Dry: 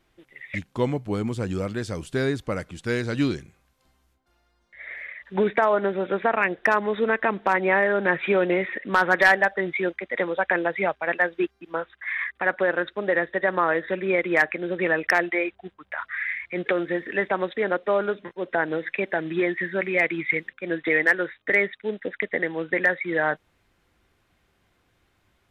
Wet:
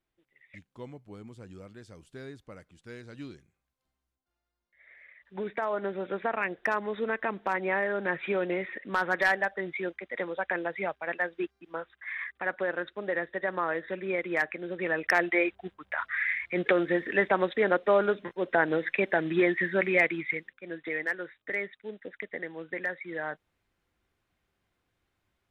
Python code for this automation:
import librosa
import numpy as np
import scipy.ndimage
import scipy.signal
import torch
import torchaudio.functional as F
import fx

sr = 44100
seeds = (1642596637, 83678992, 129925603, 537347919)

y = fx.gain(x, sr, db=fx.line((4.85, -19.0), (5.9, -8.0), (14.81, -8.0), (15.4, -0.5), (19.93, -0.5), (20.54, -11.5)))